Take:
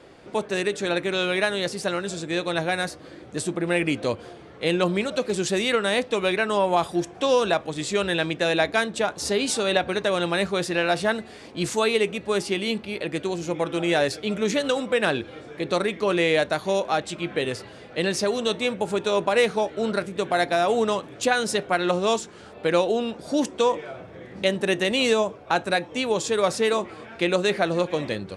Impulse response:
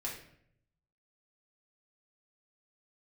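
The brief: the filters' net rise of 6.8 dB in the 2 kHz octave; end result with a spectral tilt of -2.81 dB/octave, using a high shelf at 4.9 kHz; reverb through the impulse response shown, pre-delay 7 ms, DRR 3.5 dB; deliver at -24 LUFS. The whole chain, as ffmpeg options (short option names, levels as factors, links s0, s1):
-filter_complex "[0:a]equalizer=f=2000:t=o:g=7.5,highshelf=f=4900:g=7.5,asplit=2[s0][s1];[1:a]atrim=start_sample=2205,adelay=7[s2];[s1][s2]afir=irnorm=-1:irlink=0,volume=0.596[s3];[s0][s3]amix=inputs=2:normalize=0,volume=0.596"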